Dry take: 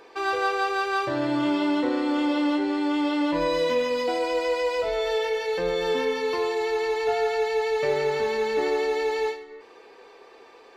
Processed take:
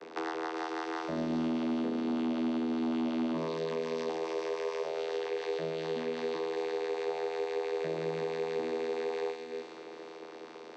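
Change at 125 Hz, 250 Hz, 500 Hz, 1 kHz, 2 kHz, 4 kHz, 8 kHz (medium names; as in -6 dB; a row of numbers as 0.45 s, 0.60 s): -3.5 dB, -6.5 dB, -9.0 dB, -11.5 dB, -13.0 dB, -12.0 dB, under -10 dB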